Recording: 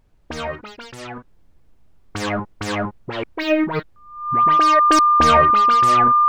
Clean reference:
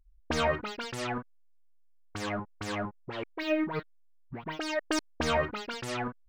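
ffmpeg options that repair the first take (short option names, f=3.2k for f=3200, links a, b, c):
-af "bandreject=f=1.2k:w=30,agate=range=-21dB:threshold=-43dB,asetnsamples=n=441:p=0,asendcmd='1.28 volume volume -10.5dB',volume=0dB"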